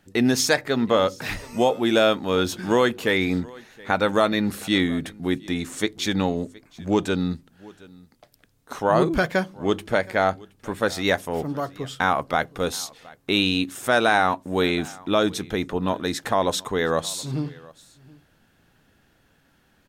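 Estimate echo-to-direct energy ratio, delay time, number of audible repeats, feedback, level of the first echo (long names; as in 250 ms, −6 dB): −23.0 dB, 721 ms, 1, repeats not evenly spaced, −23.0 dB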